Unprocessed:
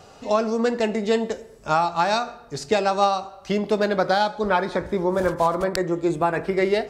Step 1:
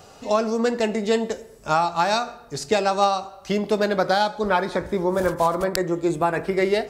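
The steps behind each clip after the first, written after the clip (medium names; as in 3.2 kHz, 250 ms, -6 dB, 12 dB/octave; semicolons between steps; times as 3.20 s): treble shelf 9.1 kHz +10 dB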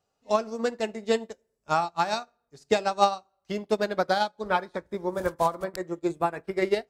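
upward expansion 2.5:1, over -36 dBFS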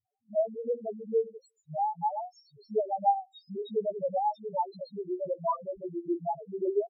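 three bands offset in time lows, mids, highs 50/630 ms, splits 210/4400 Hz; loudest bins only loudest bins 1; trim +4 dB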